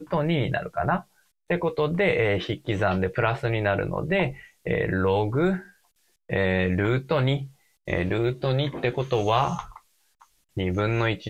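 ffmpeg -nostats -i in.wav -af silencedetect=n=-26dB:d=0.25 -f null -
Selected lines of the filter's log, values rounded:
silence_start: 0.97
silence_end: 1.50 | silence_duration: 0.53
silence_start: 4.29
silence_end: 4.67 | silence_duration: 0.38
silence_start: 5.57
silence_end: 6.30 | silence_duration: 0.73
silence_start: 7.42
silence_end: 7.88 | silence_duration: 0.46
silence_start: 9.60
silence_end: 10.57 | silence_duration: 0.97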